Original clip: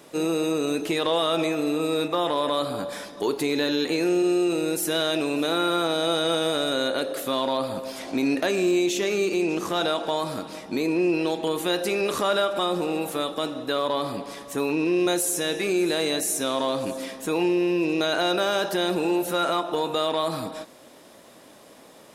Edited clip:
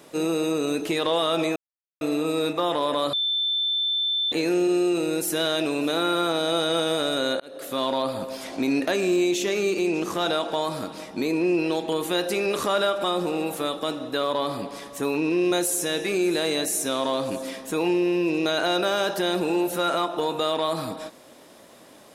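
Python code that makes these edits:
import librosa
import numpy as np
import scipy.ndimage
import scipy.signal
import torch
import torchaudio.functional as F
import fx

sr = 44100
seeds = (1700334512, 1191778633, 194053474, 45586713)

y = fx.edit(x, sr, fx.insert_silence(at_s=1.56, length_s=0.45),
    fx.bleep(start_s=2.68, length_s=1.19, hz=3540.0, db=-21.5),
    fx.fade_in_span(start_s=6.95, length_s=0.42), tone=tone)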